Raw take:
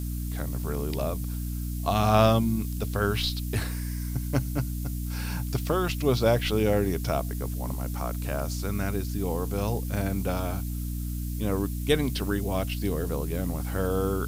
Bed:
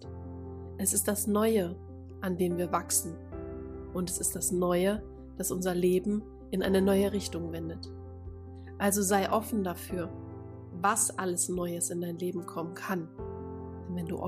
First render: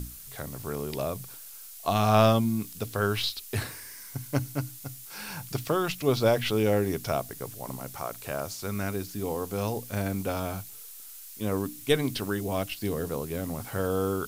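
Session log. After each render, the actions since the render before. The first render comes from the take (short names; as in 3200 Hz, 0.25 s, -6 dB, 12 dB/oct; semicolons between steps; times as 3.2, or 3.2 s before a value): notches 60/120/180/240/300 Hz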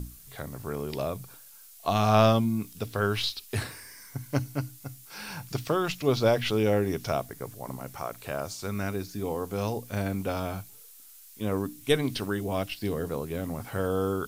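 noise print and reduce 6 dB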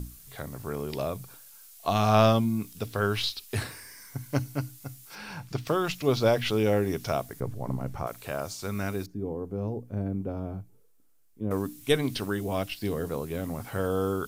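5.15–5.67 LPF 3400 Hz 6 dB/oct; 7.4–8.07 tilt -3 dB/oct; 9.06–11.51 EQ curve 380 Hz 0 dB, 570 Hz -6 dB, 3800 Hz -25 dB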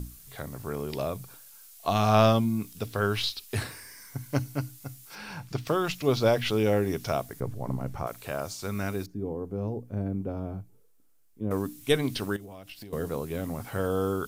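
12.36–12.93 compressor 12:1, threshold -40 dBFS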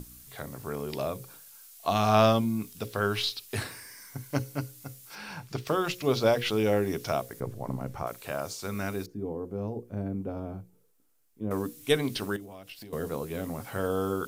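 low shelf 85 Hz -8.5 dB; notches 60/120/180/240/300/360/420/480/540 Hz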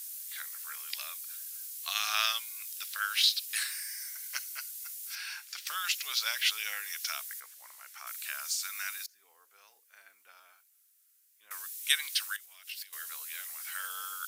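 Chebyshev high-pass 1600 Hz, order 3; high shelf 2900 Hz +9.5 dB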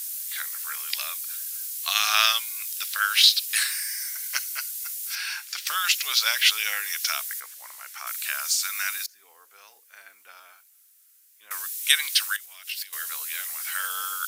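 gain +9 dB; limiter -2 dBFS, peak gain reduction 3 dB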